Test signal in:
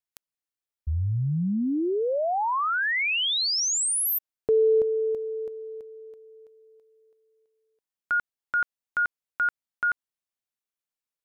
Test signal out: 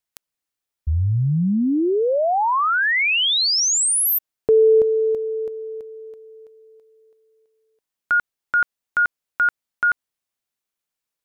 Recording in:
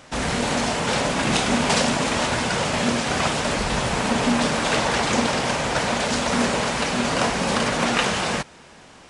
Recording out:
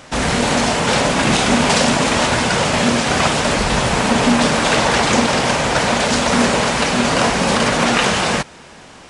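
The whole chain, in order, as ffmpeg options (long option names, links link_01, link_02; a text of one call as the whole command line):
ffmpeg -i in.wav -af "alimiter=level_in=9dB:limit=-1dB:release=50:level=0:latency=1,volume=-2.5dB" out.wav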